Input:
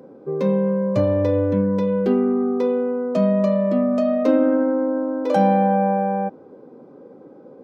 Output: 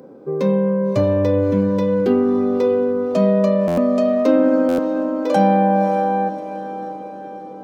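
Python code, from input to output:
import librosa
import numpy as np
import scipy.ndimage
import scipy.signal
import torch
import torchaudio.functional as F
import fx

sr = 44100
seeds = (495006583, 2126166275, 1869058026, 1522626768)

p1 = fx.high_shelf(x, sr, hz=4500.0, db=6.5)
p2 = p1 + fx.echo_diffused(p1, sr, ms=598, feedback_pct=53, wet_db=-11.5, dry=0)
p3 = fx.buffer_glitch(p2, sr, at_s=(3.67, 4.68), block=512, repeats=8)
y = F.gain(torch.from_numpy(p3), 2.0).numpy()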